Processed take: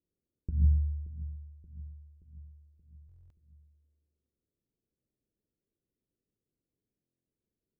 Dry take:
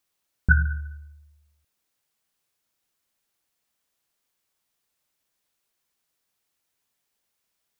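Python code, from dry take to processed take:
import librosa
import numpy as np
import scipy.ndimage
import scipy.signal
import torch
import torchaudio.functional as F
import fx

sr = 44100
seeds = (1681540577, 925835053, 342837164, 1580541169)

p1 = fx.tube_stage(x, sr, drive_db=13.0, bias=0.35)
p2 = fx.over_compress(p1, sr, threshold_db=-25.0, ratio=-0.5)
p3 = scipy.signal.sosfilt(scipy.signal.cheby2(4, 50, 1100.0, 'lowpass', fs=sr, output='sos'), p2)
p4 = p3 + fx.echo_feedback(p3, sr, ms=577, feedback_pct=55, wet_db=-15, dry=0)
p5 = fx.buffer_glitch(p4, sr, at_s=(3.07, 7.03), block=1024, repeats=9)
y = F.gain(torch.from_numpy(p5), 2.5).numpy()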